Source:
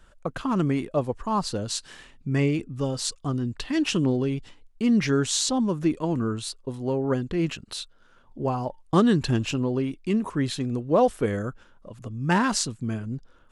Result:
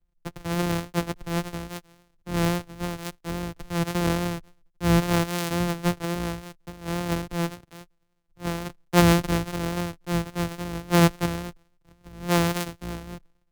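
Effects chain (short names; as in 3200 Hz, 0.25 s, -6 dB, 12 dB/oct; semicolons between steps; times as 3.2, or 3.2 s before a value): sample sorter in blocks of 256 samples; vibrato 3.6 Hz 29 cents; three-band expander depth 70%; gain -2 dB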